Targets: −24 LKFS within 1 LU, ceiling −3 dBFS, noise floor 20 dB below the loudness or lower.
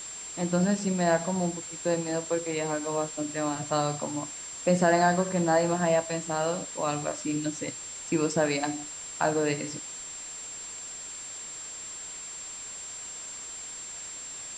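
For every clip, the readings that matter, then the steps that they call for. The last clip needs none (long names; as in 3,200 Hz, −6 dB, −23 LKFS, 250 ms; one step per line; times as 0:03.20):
interfering tone 7,400 Hz; level of the tone −38 dBFS; background noise floor −40 dBFS; target noise floor −50 dBFS; integrated loudness −29.5 LKFS; sample peak −9.5 dBFS; target loudness −24.0 LKFS
→ notch filter 7,400 Hz, Q 30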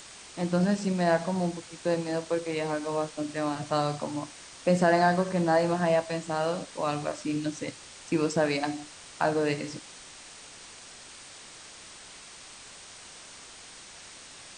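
interfering tone none found; background noise floor −48 dBFS; target noise floor −49 dBFS
→ noise reduction from a noise print 6 dB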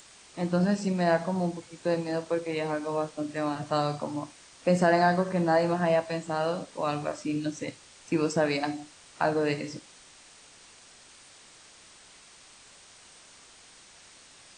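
background noise floor −54 dBFS; integrated loudness −28.5 LKFS; sample peak −9.5 dBFS; target loudness −24.0 LKFS
→ level +4.5 dB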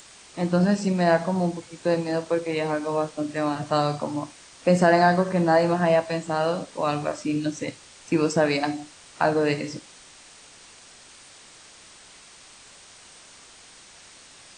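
integrated loudness −24.0 LKFS; sample peak −5.0 dBFS; background noise floor −49 dBFS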